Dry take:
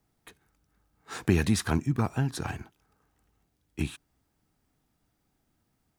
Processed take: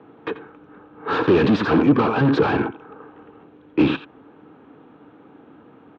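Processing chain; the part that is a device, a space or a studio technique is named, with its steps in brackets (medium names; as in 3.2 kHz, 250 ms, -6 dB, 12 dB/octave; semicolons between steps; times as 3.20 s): local Wiener filter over 9 samples; 1.77–2.21 s: tilt EQ +2 dB/octave; echo from a far wall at 15 m, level -18 dB; overdrive pedal into a guitar cabinet (overdrive pedal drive 41 dB, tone 1.2 kHz, clips at -9.5 dBFS; cabinet simulation 100–4100 Hz, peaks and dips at 290 Hz +8 dB, 460 Hz +8 dB, 680 Hz -6 dB, 2 kHz -9 dB)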